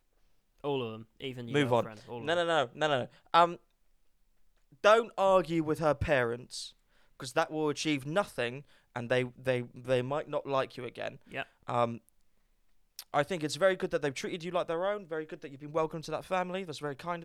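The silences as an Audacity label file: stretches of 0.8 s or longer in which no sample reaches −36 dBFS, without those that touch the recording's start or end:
3.540000	4.840000	silence
11.960000	12.990000	silence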